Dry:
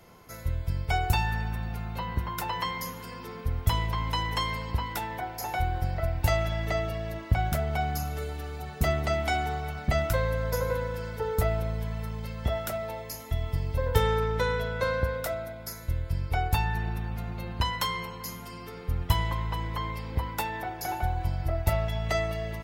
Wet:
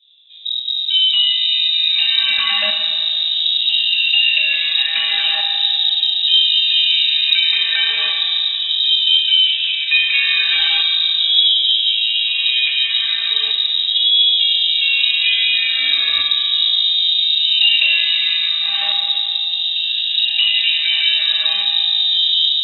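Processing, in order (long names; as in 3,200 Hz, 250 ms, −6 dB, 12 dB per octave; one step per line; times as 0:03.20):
on a send: feedback delay with all-pass diffusion 1,358 ms, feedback 47%, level −3.5 dB
on the sum: automatic gain control gain up to 6.5 dB
parametric band 1,200 Hz +9.5 dB 0.62 octaves
bit reduction 9 bits
in parallel at −1 dB: output level in coarse steps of 13 dB
on the sum: soft clipping −3.5 dBFS, distortion −23 dB
auto-filter low-pass saw up 0.37 Hz 310–2,900 Hz
feedback delay network reverb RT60 2.6 s, low-frequency decay 1.4×, high-frequency decay 0.75×, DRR 0.5 dB
voice inversion scrambler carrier 3,800 Hz
level −6 dB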